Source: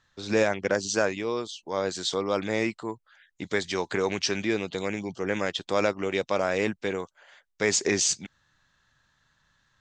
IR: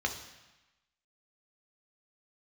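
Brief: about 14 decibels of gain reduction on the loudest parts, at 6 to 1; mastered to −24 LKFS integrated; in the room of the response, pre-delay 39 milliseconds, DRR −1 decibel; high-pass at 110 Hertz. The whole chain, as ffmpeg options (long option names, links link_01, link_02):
-filter_complex "[0:a]highpass=110,acompressor=threshold=-35dB:ratio=6,asplit=2[link_01][link_02];[1:a]atrim=start_sample=2205,adelay=39[link_03];[link_02][link_03]afir=irnorm=-1:irlink=0,volume=-5.5dB[link_04];[link_01][link_04]amix=inputs=2:normalize=0,volume=12dB"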